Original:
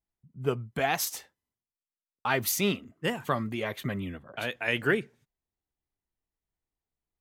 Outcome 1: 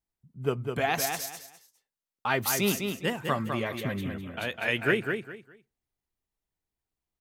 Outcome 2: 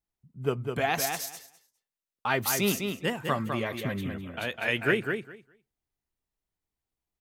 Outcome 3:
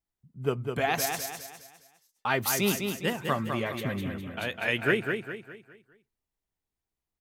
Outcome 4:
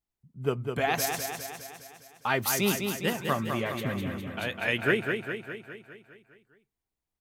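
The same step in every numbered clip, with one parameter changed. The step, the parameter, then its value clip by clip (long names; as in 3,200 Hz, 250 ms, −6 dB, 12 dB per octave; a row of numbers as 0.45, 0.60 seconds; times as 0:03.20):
repeating echo, feedback: 24, 15, 40, 58%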